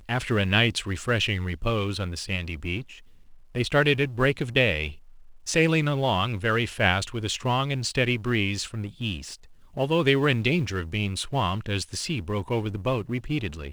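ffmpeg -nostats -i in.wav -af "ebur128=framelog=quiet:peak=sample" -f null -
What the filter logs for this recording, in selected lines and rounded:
Integrated loudness:
  I:         -25.4 LUFS
  Threshold: -35.8 LUFS
Loudness range:
  LRA:         3.0 LU
  Threshold: -45.7 LUFS
  LRA low:   -27.2 LUFS
  LRA high:  -24.2 LUFS
Sample peak:
  Peak:       -5.4 dBFS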